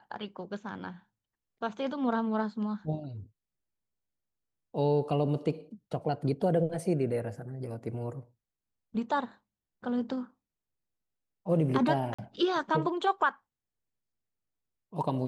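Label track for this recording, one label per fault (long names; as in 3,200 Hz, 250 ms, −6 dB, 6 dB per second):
12.140000	12.190000	drop-out 45 ms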